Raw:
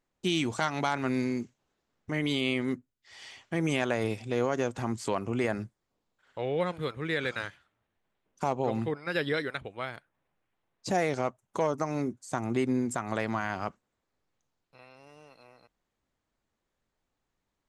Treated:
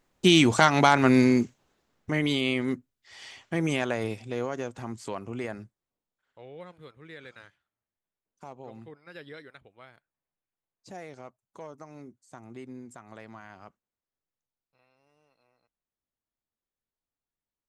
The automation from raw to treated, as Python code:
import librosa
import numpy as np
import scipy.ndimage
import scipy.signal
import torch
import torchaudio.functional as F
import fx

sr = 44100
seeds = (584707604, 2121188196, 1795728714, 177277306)

y = fx.gain(x, sr, db=fx.line((1.42, 10.0), (2.43, 2.0), (3.57, 2.0), (4.71, -5.0), (5.39, -5.0), (6.5, -15.0)))